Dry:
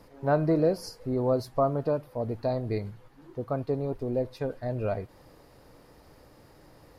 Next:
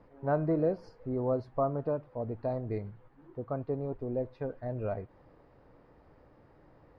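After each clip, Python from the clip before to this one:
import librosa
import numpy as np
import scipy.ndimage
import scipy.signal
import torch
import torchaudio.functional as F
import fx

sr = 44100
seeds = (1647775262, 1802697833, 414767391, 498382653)

y = scipy.signal.sosfilt(scipy.signal.butter(2, 1900.0, 'lowpass', fs=sr, output='sos'), x)
y = y * 10.0 ** (-4.5 / 20.0)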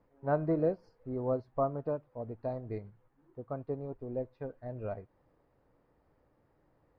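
y = fx.upward_expand(x, sr, threshold_db=-46.0, expansion=1.5)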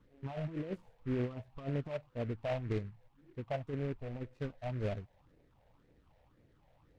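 y = fx.over_compress(x, sr, threshold_db=-36.0, ratio=-1.0)
y = fx.phaser_stages(y, sr, stages=6, low_hz=310.0, high_hz=1200.0, hz=1.9, feedback_pct=25)
y = fx.noise_mod_delay(y, sr, seeds[0], noise_hz=1600.0, depth_ms=0.058)
y = y * 10.0 ** (2.0 / 20.0)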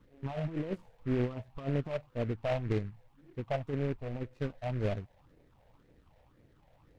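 y = np.where(x < 0.0, 10.0 ** (-3.0 / 20.0) * x, x)
y = y * 10.0 ** (5.0 / 20.0)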